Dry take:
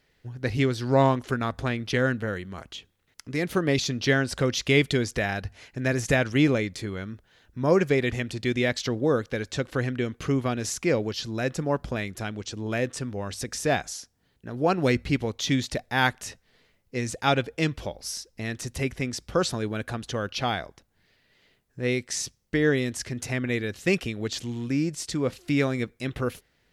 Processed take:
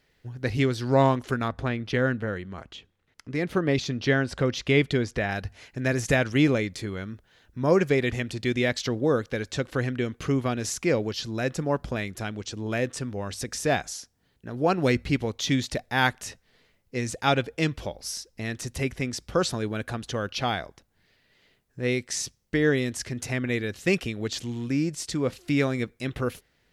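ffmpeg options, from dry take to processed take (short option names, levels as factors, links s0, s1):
-filter_complex "[0:a]asettb=1/sr,asplit=3[s0][s1][s2];[s0]atrim=end=1.484[s3];[s1]atrim=start=1.48:end=5.31,asetpts=PTS-STARTPTS,afade=t=in:d=0.004:c=qsin,afade=t=out:st=3.826:d=0.004:c=qsin,lowpass=f=2900:p=1[s4];[s2]atrim=start=5.306[s5];[s3][s4]acrossfade=d=0.004:c1=hsin:c2=qsin[s6];[s6][s5]acrossfade=d=0.004:c1=qsin:c2=hsin"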